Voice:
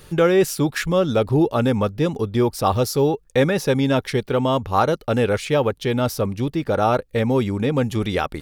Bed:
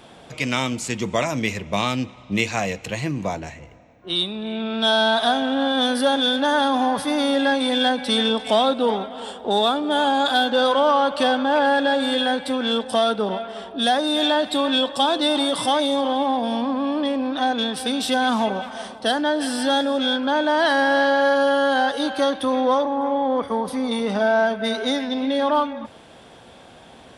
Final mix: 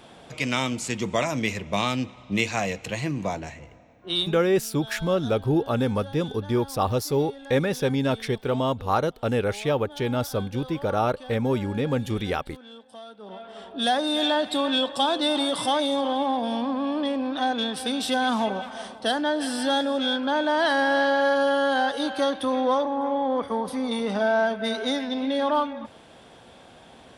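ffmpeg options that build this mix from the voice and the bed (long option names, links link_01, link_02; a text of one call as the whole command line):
ffmpeg -i stem1.wav -i stem2.wav -filter_complex "[0:a]adelay=4150,volume=-5dB[link_01];[1:a]volume=17.5dB,afade=type=out:start_time=4.19:duration=0.22:silence=0.0891251,afade=type=in:start_time=13.19:duration=0.69:silence=0.1[link_02];[link_01][link_02]amix=inputs=2:normalize=0" out.wav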